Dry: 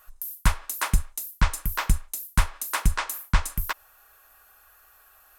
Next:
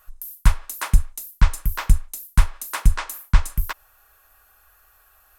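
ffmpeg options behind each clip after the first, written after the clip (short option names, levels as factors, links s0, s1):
-af "lowshelf=f=110:g=9,volume=0.891"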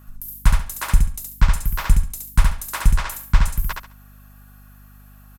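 -af "aecho=1:1:69|138|207:0.668|0.16|0.0385,aeval=exprs='val(0)+0.00562*(sin(2*PI*50*n/s)+sin(2*PI*2*50*n/s)/2+sin(2*PI*3*50*n/s)/3+sin(2*PI*4*50*n/s)/4+sin(2*PI*5*50*n/s)/5)':c=same"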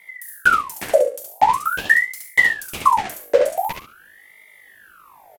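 -filter_complex "[0:a]asplit=2[s0][s1];[s1]adelay=44,volume=0.237[s2];[s0][s2]amix=inputs=2:normalize=0,aeval=exprs='val(0)*sin(2*PI*1300*n/s+1300*0.6/0.45*sin(2*PI*0.45*n/s))':c=same"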